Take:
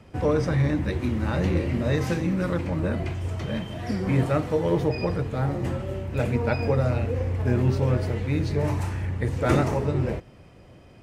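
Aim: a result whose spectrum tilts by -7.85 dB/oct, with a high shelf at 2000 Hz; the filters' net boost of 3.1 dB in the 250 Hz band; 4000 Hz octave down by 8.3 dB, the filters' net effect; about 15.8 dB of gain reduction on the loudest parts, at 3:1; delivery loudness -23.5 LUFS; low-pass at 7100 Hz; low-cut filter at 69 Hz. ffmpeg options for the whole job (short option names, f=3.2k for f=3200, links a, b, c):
-af "highpass=69,lowpass=7.1k,equalizer=f=250:t=o:g=4.5,highshelf=f=2k:g=-6,equalizer=f=4k:t=o:g=-4.5,acompressor=threshold=-38dB:ratio=3,volume=14dB"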